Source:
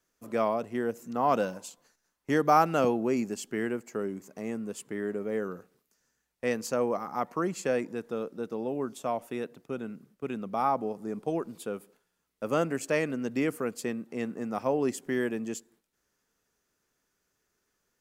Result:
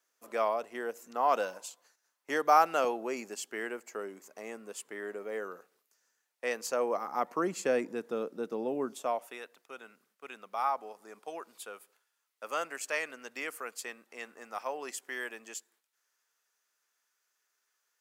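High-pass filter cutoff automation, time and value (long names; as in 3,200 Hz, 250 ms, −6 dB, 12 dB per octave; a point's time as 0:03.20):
0:06.56 560 Hz
0:07.54 240 Hz
0:08.86 240 Hz
0:09.42 930 Hz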